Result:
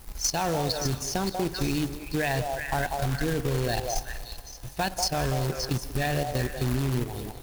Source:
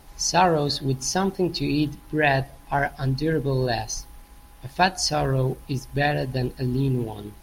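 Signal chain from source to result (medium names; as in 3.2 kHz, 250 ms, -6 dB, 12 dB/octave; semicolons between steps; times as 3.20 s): bass shelf 79 Hz +11.5 dB; level held to a coarse grid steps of 12 dB; treble shelf 8 kHz +9 dB; repeats whose band climbs or falls 190 ms, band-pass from 650 Hz, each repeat 1.4 oct, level -3 dB; compression 8:1, threshold -23 dBFS, peak gain reduction 5.5 dB; reverberation RT60 2.4 s, pre-delay 113 ms, DRR 16.5 dB; companded quantiser 4-bit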